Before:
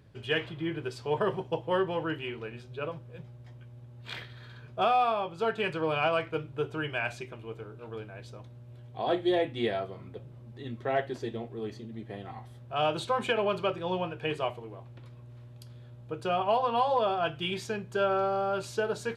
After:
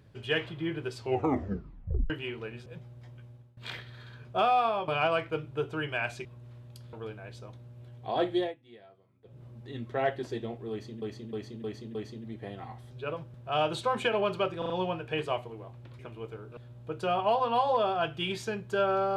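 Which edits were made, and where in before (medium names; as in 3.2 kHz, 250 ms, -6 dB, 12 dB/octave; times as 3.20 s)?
0.98 s: tape stop 1.12 s
2.66–3.09 s: move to 12.58 s
3.69–4.00 s: fade out, to -20.5 dB
5.31–5.89 s: delete
7.26–7.84 s: swap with 15.11–15.79 s
9.25–10.34 s: dip -23 dB, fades 0.21 s
11.62–11.93 s: loop, 5 plays
13.82 s: stutter 0.04 s, 4 plays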